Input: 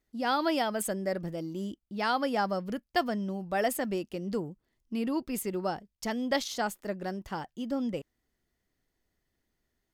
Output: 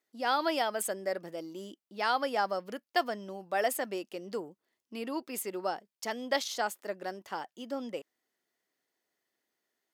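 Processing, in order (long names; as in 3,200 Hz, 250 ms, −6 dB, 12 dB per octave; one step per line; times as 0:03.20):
high-pass filter 400 Hz 12 dB per octave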